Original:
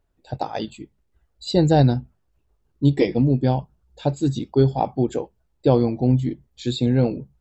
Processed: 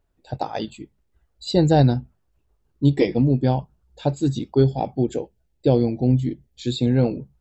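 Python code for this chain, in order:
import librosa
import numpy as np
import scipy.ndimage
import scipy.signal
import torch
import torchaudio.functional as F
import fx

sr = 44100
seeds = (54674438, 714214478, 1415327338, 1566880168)

y = fx.peak_eq(x, sr, hz=1100.0, db=-12.0, octaves=0.68, at=(4.64, 6.8))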